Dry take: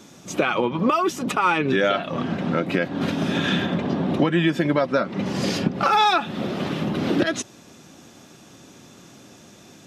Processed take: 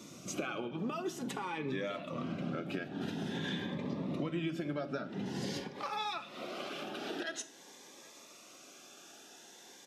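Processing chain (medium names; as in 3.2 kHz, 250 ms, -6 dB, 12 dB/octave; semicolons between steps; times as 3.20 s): high-pass 100 Hz 12 dB/octave, from 5.60 s 530 Hz; compression 2.5:1, threshold -36 dBFS, peak gain reduction 14 dB; delay 777 ms -23.5 dB; reverberation RT60 0.70 s, pre-delay 3 ms, DRR 9 dB; Shepard-style phaser rising 0.48 Hz; trim -3.5 dB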